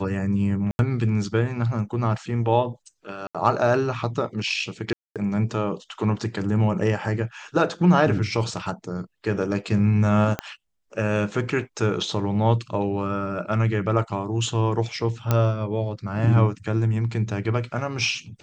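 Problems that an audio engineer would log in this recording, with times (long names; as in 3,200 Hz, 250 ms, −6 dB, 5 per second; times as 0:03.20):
0:00.71–0:00.79: drop-out 81 ms
0:03.27–0:03.35: drop-out 76 ms
0:04.93–0:05.16: drop-out 227 ms
0:10.39: click −11 dBFS
0:15.31: click −7 dBFS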